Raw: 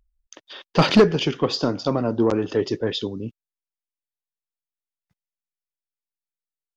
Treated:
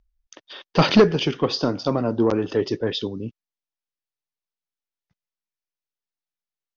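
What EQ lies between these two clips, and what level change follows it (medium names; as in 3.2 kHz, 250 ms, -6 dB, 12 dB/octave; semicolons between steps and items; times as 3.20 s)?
steep low-pass 6.4 kHz 72 dB/octave; 0.0 dB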